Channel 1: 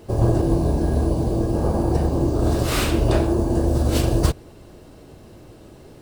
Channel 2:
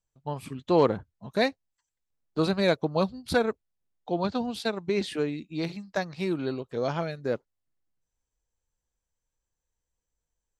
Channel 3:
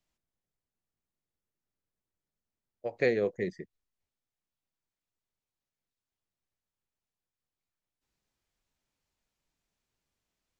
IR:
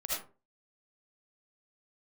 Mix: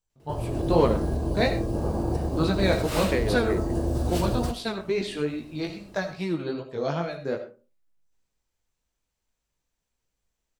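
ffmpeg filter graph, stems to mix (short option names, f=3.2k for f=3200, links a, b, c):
-filter_complex "[0:a]alimiter=limit=-10dB:level=0:latency=1:release=208,dynaudnorm=f=130:g=5:m=6dB,adelay=200,volume=-13dB,asplit=2[a][b];[b]volume=-14.5dB[c];[1:a]flanger=delay=16.5:depth=4.5:speed=2.4,volume=1.5dB,asplit=2[d][e];[e]volume=-10.5dB[f];[2:a]adelay=100,volume=-0.5dB[g];[3:a]atrim=start_sample=2205[h];[c][f]amix=inputs=2:normalize=0[i];[i][h]afir=irnorm=-1:irlink=0[j];[a][d][g][j]amix=inputs=4:normalize=0"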